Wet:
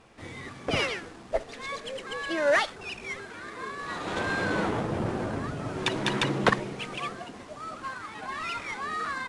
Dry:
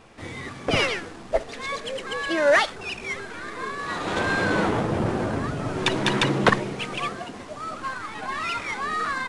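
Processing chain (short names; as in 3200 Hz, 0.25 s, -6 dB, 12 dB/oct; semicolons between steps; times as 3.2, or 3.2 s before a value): added harmonics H 3 -22 dB, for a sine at -4 dBFS; gain -3 dB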